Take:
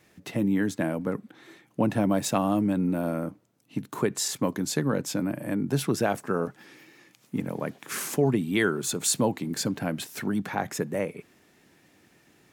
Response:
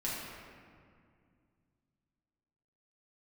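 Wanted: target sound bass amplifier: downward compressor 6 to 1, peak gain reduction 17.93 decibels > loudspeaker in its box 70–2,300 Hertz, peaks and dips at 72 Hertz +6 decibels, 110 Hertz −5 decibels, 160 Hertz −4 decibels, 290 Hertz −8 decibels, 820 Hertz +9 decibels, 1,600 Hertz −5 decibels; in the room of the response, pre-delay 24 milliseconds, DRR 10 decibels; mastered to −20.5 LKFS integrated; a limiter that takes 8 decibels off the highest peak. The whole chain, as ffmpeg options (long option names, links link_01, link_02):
-filter_complex "[0:a]alimiter=limit=-18.5dB:level=0:latency=1,asplit=2[link_01][link_02];[1:a]atrim=start_sample=2205,adelay=24[link_03];[link_02][link_03]afir=irnorm=-1:irlink=0,volume=-14.5dB[link_04];[link_01][link_04]amix=inputs=2:normalize=0,acompressor=threshold=-41dB:ratio=6,highpass=frequency=70:width=0.5412,highpass=frequency=70:width=1.3066,equalizer=frequency=72:width_type=q:width=4:gain=6,equalizer=frequency=110:width_type=q:width=4:gain=-5,equalizer=frequency=160:width_type=q:width=4:gain=-4,equalizer=frequency=290:width_type=q:width=4:gain=-8,equalizer=frequency=820:width_type=q:width=4:gain=9,equalizer=frequency=1600:width_type=q:width=4:gain=-5,lowpass=frequency=2300:width=0.5412,lowpass=frequency=2300:width=1.3066,volume=26.5dB"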